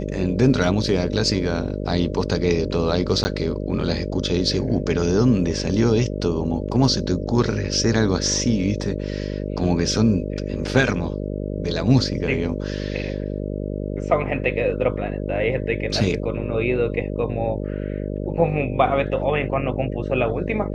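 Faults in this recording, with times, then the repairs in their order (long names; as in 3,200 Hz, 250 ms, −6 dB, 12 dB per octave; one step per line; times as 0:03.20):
mains buzz 50 Hz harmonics 12 −27 dBFS
0:03.24–0:03.25: drop-out 10 ms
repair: hum removal 50 Hz, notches 12
repair the gap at 0:03.24, 10 ms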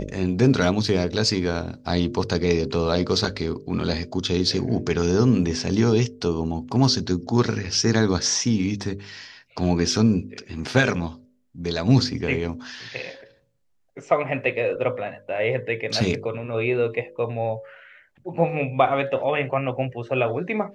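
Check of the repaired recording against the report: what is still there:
none of them is left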